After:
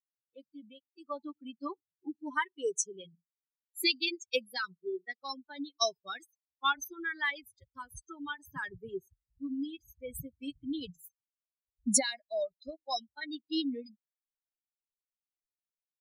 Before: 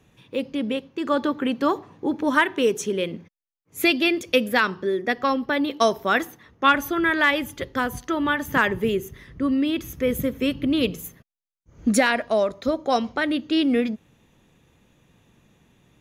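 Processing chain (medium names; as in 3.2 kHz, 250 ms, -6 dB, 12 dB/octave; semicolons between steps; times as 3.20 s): expander on every frequency bin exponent 3; high-order bell 6.2 kHz +14.5 dB; trim -8.5 dB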